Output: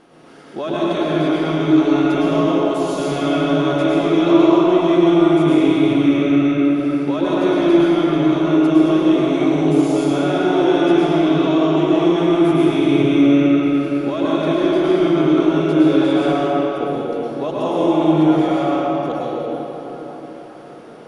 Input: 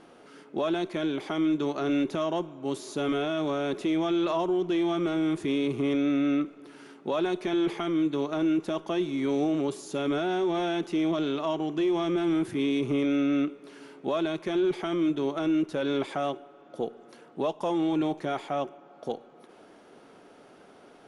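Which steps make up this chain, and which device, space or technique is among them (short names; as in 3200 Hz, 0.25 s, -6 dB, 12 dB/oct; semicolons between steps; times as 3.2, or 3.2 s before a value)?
cathedral (reverb RT60 4.5 s, pre-delay 99 ms, DRR -8 dB); gain +2.5 dB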